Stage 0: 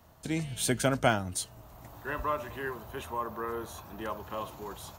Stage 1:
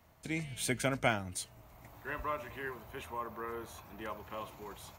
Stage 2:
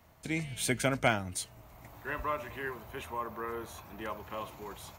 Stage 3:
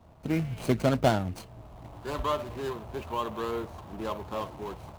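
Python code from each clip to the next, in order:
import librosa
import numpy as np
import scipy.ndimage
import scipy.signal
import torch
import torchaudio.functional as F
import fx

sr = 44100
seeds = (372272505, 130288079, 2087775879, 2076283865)

y1 = fx.peak_eq(x, sr, hz=2200.0, db=9.0, octaves=0.42)
y1 = y1 * 10.0 ** (-6.0 / 20.0)
y2 = np.clip(y1, -10.0 ** (-16.0 / 20.0), 10.0 ** (-16.0 / 20.0))
y2 = y2 * 10.0 ** (3.0 / 20.0)
y3 = scipy.ndimage.median_filter(y2, 25, mode='constant')
y3 = y3 * 10.0 ** (7.5 / 20.0)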